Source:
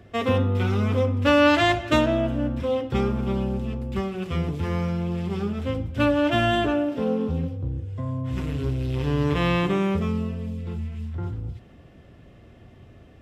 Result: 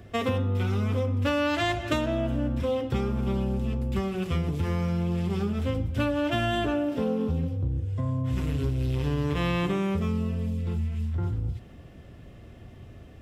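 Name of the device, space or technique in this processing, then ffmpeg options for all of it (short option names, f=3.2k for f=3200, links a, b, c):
ASMR close-microphone chain: -af "lowshelf=f=120:g=5,acompressor=threshold=-23dB:ratio=6,highshelf=f=6.7k:g=7.5"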